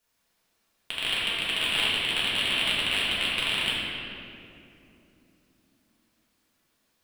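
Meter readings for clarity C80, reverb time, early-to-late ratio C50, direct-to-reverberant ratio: -0.5 dB, 2.9 s, -3.0 dB, -8.0 dB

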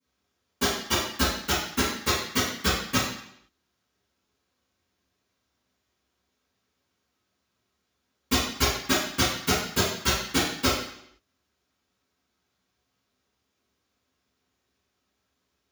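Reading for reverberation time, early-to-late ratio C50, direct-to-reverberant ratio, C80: 0.70 s, 0.5 dB, -17.5 dB, 5.0 dB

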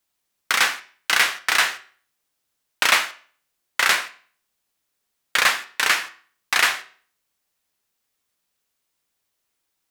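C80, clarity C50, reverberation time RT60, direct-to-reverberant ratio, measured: 20.0 dB, 15.5 dB, 0.45 s, 9.0 dB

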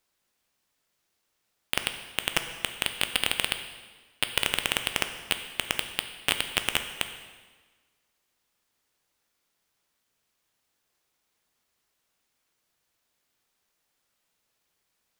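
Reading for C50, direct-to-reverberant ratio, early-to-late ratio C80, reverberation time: 9.0 dB, 7.0 dB, 10.0 dB, 1.4 s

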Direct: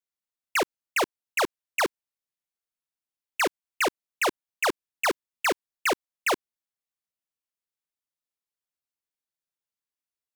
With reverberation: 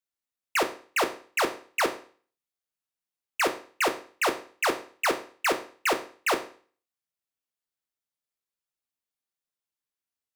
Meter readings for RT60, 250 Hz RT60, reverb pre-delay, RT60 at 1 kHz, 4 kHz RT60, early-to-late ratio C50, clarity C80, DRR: 0.45 s, 0.45 s, 10 ms, 0.45 s, 0.40 s, 12.5 dB, 16.5 dB, 6.5 dB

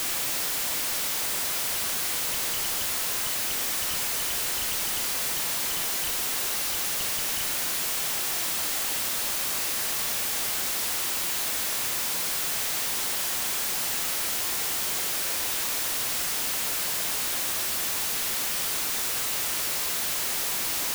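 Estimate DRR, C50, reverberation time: 6.5 dB, 8.5 dB, 1.3 s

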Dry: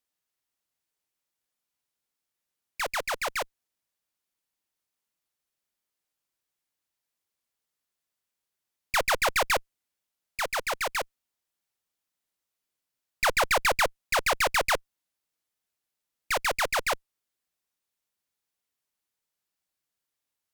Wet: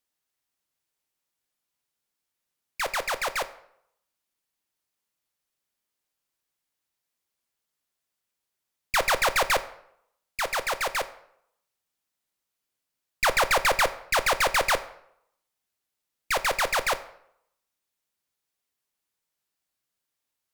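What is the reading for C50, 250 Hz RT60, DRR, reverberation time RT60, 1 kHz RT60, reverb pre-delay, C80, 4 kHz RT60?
15.0 dB, 0.70 s, 11.0 dB, 0.75 s, 0.75 s, 7 ms, 18.5 dB, 0.55 s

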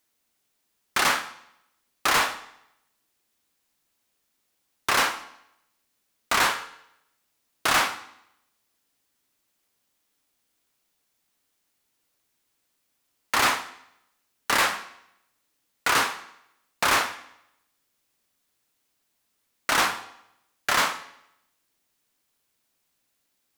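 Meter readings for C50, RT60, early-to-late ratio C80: 13.5 dB, 0.80 s, 15.5 dB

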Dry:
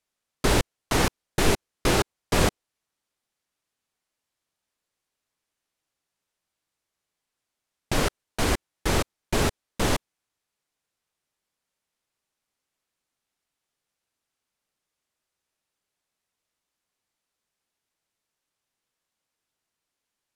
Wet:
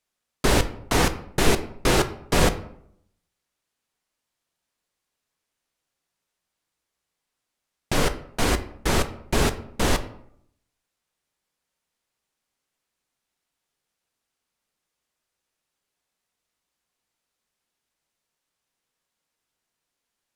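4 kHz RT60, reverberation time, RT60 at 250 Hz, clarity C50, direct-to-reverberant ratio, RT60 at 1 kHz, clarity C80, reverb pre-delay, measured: 0.40 s, 0.70 s, 0.80 s, 14.0 dB, 9.0 dB, 0.65 s, 17.0 dB, 4 ms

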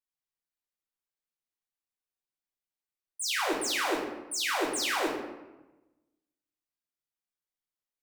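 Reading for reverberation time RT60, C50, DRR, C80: 1.1 s, 3.0 dB, -4.5 dB, 6.0 dB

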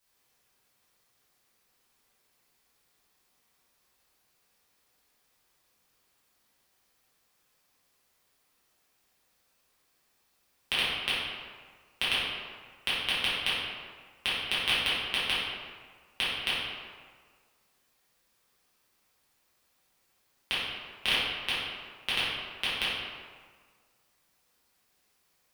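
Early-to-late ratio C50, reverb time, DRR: -2.5 dB, 1.7 s, -11.5 dB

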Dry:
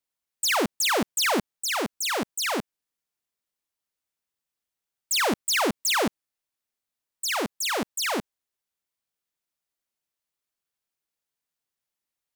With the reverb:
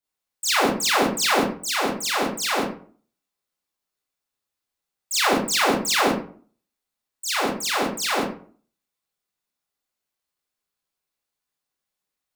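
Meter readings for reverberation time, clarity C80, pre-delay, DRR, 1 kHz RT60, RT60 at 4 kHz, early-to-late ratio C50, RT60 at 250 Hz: 0.45 s, 8.0 dB, 25 ms, -7.0 dB, 0.45 s, 0.30 s, 2.5 dB, 0.55 s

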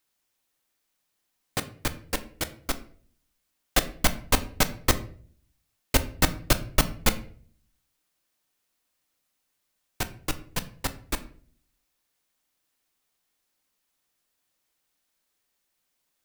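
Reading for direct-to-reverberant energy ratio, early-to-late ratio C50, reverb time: 9.5 dB, 16.0 dB, 0.50 s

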